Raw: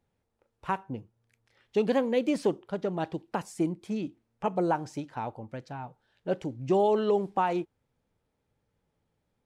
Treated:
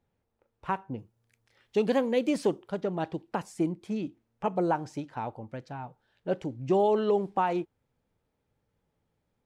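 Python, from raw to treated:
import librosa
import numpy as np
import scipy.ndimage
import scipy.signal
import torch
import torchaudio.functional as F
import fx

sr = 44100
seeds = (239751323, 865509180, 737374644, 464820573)

y = fx.high_shelf(x, sr, hz=5000.0, db=fx.steps((0.0, -8.5), (0.98, 3.0), (2.79, -4.0)))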